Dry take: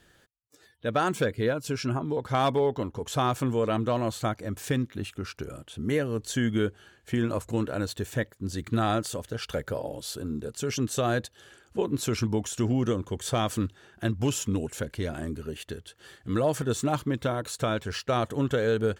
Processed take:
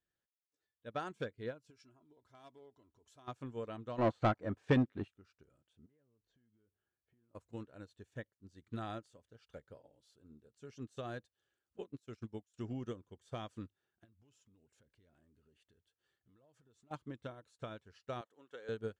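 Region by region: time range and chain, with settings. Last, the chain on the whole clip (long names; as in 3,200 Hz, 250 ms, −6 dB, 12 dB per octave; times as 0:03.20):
0:01.70–0:03.28: downward compressor 2 to 1, threshold −36 dBFS + high-shelf EQ 5,200 Hz +10 dB + comb filter 3 ms, depth 44%
0:03.98–0:05.08: spectral tilt −2 dB per octave + mid-hump overdrive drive 21 dB, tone 1,800 Hz, clips at −10.5 dBFS
0:05.86–0:07.35: head-to-tape spacing loss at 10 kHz 33 dB + downward compressor 8 to 1, threshold −40 dBFS
0:11.78–0:12.54: notch filter 940 Hz, Q 8.9 + downward expander −25 dBFS + high-shelf EQ 4,400 Hz +5 dB
0:14.04–0:16.91: high-shelf EQ 12,000 Hz −3.5 dB + downward compressor 5 to 1, threshold −34 dBFS
0:18.21–0:18.69: high-pass filter 440 Hz + notch filter 630 Hz, Q 8.2
whole clip: low-pass filter 7,700 Hz 12 dB per octave; expander for the loud parts 2.5 to 1, over −35 dBFS; level −6 dB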